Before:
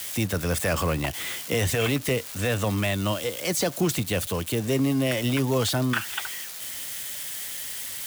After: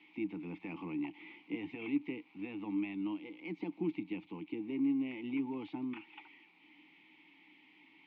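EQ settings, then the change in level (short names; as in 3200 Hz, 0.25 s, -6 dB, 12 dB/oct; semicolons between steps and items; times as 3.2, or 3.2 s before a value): vowel filter u; speaker cabinet 120–3500 Hz, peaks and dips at 180 Hz +10 dB, 320 Hz +7 dB, 520 Hz +4 dB, 1800 Hz +4 dB, 2600 Hz +5 dB; -6.0 dB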